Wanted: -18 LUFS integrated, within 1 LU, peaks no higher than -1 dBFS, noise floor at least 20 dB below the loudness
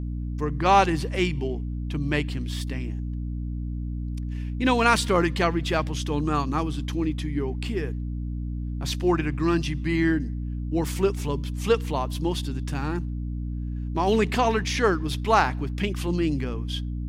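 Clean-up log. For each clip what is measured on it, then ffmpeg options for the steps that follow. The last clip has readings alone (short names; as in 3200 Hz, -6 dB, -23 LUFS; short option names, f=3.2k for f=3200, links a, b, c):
hum 60 Hz; harmonics up to 300 Hz; hum level -28 dBFS; loudness -26.0 LUFS; peak -5.0 dBFS; loudness target -18.0 LUFS
-> -af "bandreject=f=60:t=h:w=6,bandreject=f=120:t=h:w=6,bandreject=f=180:t=h:w=6,bandreject=f=240:t=h:w=6,bandreject=f=300:t=h:w=6"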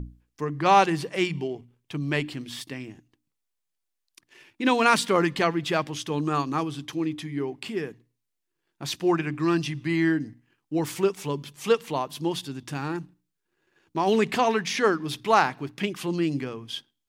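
hum none; loudness -26.0 LUFS; peak -5.5 dBFS; loudness target -18.0 LUFS
-> -af "volume=8dB,alimiter=limit=-1dB:level=0:latency=1"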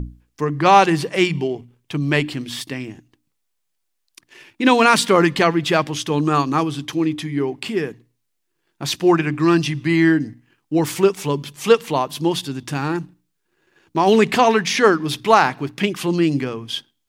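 loudness -18.5 LUFS; peak -1.0 dBFS; noise floor -73 dBFS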